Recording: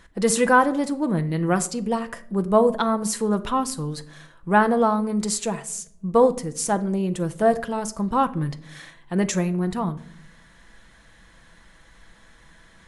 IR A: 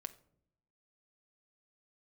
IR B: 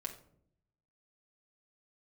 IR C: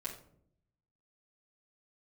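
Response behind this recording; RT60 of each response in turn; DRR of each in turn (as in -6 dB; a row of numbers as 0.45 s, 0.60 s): A; 0.65 s, 0.65 s, 0.65 s; 8.0 dB, 0.0 dB, -7.0 dB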